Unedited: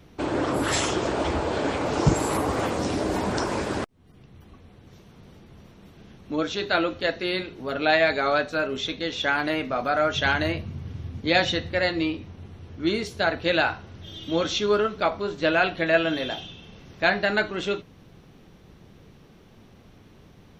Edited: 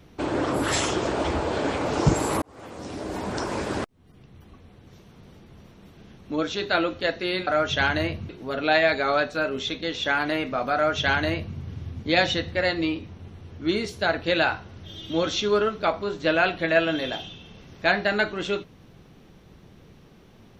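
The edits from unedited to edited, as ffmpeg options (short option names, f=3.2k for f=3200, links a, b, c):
-filter_complex "[0:a]asplit=4[a][b][c][d];[a]atrim=end=2.42,asetpts=PTS-STARTPTS,afade=t=out:st=2.416:d=0.004:c=hsin[e];[b]atrim=start=2.42:end=7.472,asetpts=PTS-STARTPTS,afade=t=in:d=1.36[f];[c]atrim=start=9.918:end=10.742[g];[d]atrim=start=7.468[h];[e][f]concat=n=2:v=0:a=1[i];[i][g]acrossfade=d=0.004:c1=hsin:c2=hsin[j];[j][h]acrossfade=d=0.004:c1=hsin:c2=hsin"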